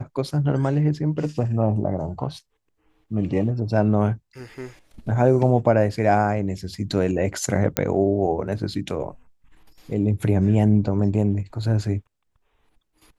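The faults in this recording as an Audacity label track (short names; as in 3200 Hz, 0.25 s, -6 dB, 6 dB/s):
7.770000	7.770000	pop -2 dBFS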